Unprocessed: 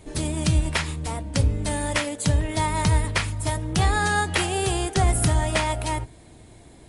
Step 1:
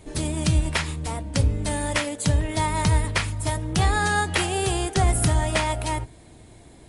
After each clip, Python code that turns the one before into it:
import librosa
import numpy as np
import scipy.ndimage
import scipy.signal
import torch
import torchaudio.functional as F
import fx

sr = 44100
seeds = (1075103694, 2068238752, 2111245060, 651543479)

y = x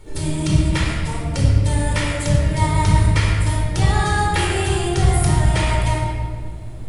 y = fx.dmg_noise_colour(x, sr, seeds[0], colour='brown', level_db=-42.0)
y = fx.room_shoebox(y, sr, seeds[1], volume_m3=2500.0, walls='mixed', distance_m=4.4)
y = F.gain(torch.from_numpy(y), -4.0).numpy()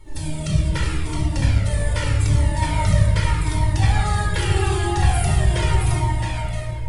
y = x + 10.0 ** (-4.0 / 20.0) * np.pad(x, (int(667 * sr / 1000.0), 0))[:len(x)]
y = fx.comb_cascade(y, sr, direction='falling', hz=0.82)